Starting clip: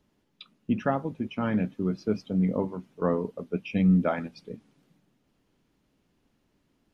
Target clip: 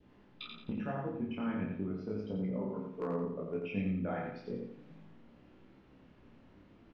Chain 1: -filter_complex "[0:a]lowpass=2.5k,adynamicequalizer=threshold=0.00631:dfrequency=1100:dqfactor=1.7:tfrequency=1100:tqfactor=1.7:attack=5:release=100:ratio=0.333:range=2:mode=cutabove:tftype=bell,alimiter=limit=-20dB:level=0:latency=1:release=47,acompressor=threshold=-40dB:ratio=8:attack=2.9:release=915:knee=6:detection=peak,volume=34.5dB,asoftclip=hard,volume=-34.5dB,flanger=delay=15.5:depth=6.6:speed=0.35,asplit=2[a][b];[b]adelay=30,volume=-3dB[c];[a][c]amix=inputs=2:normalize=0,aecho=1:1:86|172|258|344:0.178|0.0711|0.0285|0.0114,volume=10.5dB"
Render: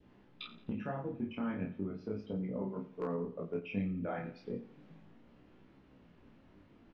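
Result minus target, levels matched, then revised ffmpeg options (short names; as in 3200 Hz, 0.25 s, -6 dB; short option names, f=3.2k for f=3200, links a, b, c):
echo-to-direct -11 dB
-filter_complex "[0:a]lowpass=2.5k,adynamicequalizer=threshold=0.00631:dfrequency=1100:dqfactor=1.7:tfrequency=1100:tqfactor=1.7:attack=5:release=100:ratio=0.333:range=2:mode=cutabove:tftype=bell,alimiter=limit=-20dB:level=0:latency=1:release=47,acompressor=threshold=-40dB:ratio=8:attack=2.9:release=915:knee=6:detection=peak,volume=34.5dB,asoftclip=hard,volume=-34.5dB,flanger=delay=15.5:depth=6.6:speed=0.35,asplit=2[a][b];[b]adelay=30,volume=-3dB[c];[a][c]amix=inputs=2:normalize=0,aecho=1:1:86|172|258|344|430:0.631|0.252|0.101|0.0404|0.0162,volume=10.5dB"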